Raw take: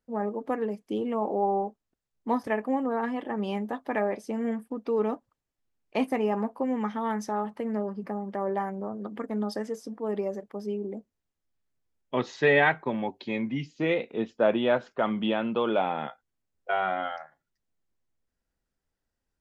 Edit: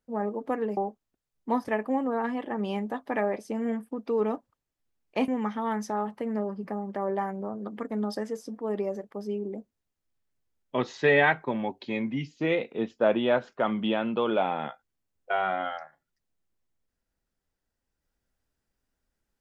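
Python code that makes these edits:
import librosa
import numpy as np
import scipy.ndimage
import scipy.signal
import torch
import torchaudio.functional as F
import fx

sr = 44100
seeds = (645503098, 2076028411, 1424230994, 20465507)

y = fx.edit(x, sr, fx.cut(start_s=0.77, length_s=0.79),
    fx.cut(start_s=6.07, length_s=0.6), tone=tone)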